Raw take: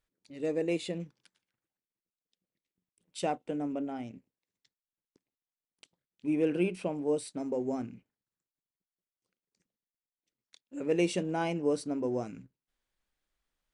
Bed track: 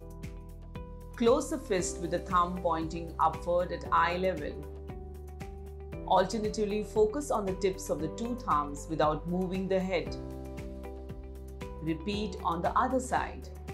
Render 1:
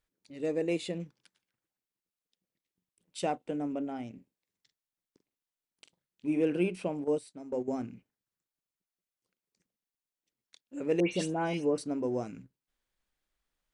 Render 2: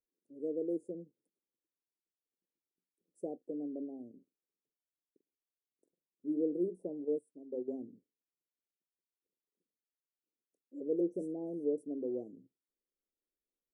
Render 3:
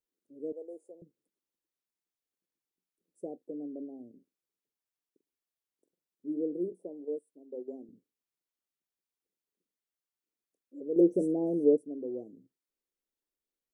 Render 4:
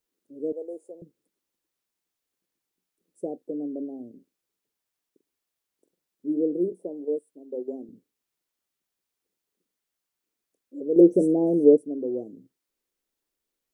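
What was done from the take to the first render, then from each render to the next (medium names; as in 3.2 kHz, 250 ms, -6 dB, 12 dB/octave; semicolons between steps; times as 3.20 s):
4.14–6.41 s: doubling 44 ms -9.5 dB; 7.04–7.68 s: gate -33 dBFS, range -9 dB; 11.00–11.78 s: phase dispersion highs, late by 135 ms, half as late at 3 kHz
inverse Chebyshev band-stop 1.4–4 kHz, stop band 70 dB; three-band isolator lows -21 dB, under 290 Hz, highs -17 dB, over 5.8 kHz
0.52–1.02 s: resonant high-pass 800 Hz, resonance Q 1.7; 6.72–7.89 s: Bessel high-pass 310 Hz; 10.96–11.77 s: gain +10 dB
trim +8 dB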